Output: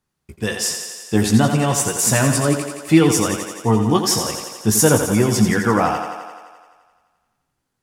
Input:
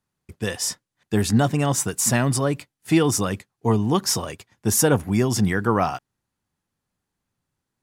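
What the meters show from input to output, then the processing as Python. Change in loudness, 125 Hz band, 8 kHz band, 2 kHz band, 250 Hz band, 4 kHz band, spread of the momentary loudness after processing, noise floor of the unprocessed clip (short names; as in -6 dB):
+4.5 dB, +3.5 dB, +5.0 dB, +5.0 dB, +5.0 dB, +5.0 dB, 11 LU, -82 dBFS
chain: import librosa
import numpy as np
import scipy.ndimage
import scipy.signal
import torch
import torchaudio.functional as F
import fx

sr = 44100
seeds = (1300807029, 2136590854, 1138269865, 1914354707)

y = fx.chorus_voices(x, sr, voices=6, hz=0.29, base_ms=16, depth_ms=3.1, mix_pct=35)
y = fx.echo_thinned(y, sr, ms=86, feedback_pct=71, hz=190.0, wet_db=-7.0)
y = y * librosa.db_to_amplitude(6.0)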